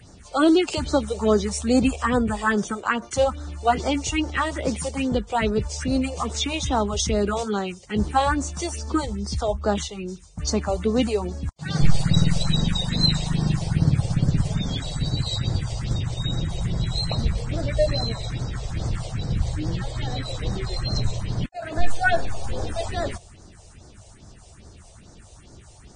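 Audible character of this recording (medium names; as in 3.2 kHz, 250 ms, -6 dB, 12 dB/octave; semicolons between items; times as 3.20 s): phasing stages 4, 2.4 Hz, lowest notch 230–2800 Hz; Vorbis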